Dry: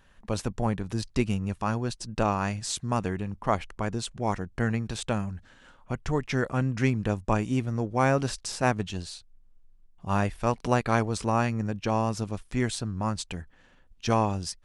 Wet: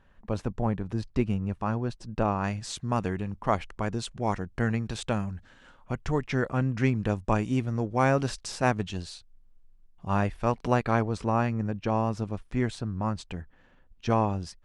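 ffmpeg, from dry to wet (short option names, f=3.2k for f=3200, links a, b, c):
-af "asetnsamples=n=441:p=0,asendcmd='2.44 lowpass f 3500;2.98 lowpass f 6300;6.24 lowpass f 3400;6.95 lowpass f 6100;10.08 lowpass f 3100;10.91 lowpass f 1900',lowpass=f=1.4k:p=1"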